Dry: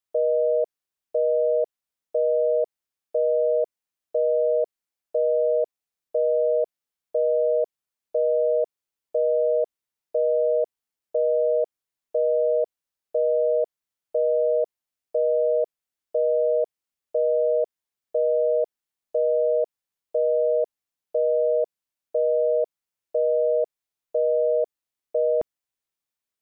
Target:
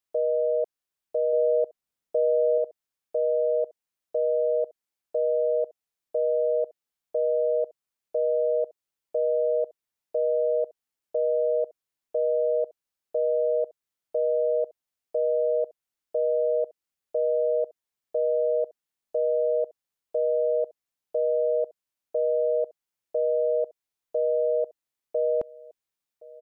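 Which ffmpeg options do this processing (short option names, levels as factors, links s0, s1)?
-filter_complex "[0:a]alimiter=limit=0.126:level=0:latency=1:release=250,asettb=1/sr,asplit=3[s0][s1][s2];[s0]atrim=end=1.334[s3];[s1]atrim=start=1.33:end=2.58,asetpts=PTS-STARTPTS,afade=t=in:d=0.004:c=qsin,afade=t=out:st=1.246:d=0.004:c=qsin,lowshelf=f=450:g=5[s4];[s2]atrim=start=2.576[s5];[s3][s4]acrossfade=d=0.004:c1=hsin:c2=qsin[s6];[s6][s5]acrossfade=d=0.004:c1=qsin:c2=hsin,aecho=1:1:1069:0.0794"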